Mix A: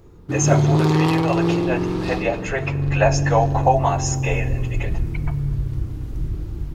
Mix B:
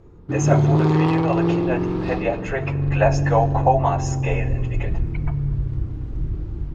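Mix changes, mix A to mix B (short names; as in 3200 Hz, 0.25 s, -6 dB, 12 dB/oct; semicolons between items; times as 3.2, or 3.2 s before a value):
background: add air absorption 58 m; master: add high shelf 3200 Hz -10.5 dB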